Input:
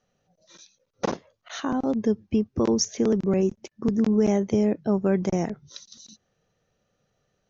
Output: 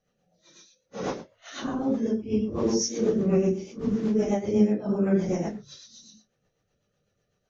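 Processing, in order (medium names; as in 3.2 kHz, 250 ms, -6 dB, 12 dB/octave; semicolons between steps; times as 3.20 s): phase randomisation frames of 200 ms; 3.16–3.72 s: flutter echo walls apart 7.5 m, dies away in 0.46 s; rotary cabinet horn 8 Hz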